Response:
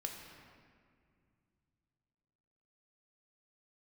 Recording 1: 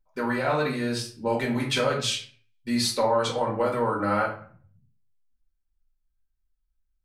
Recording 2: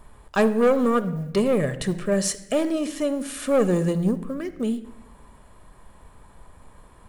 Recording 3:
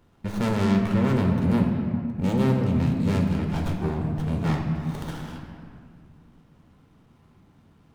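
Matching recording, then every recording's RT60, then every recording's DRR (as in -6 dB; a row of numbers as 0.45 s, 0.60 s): 3; 0.50 s, 1.0 s, 2.2 s; -3.5 dB, 11.0 dB, 1.5 dB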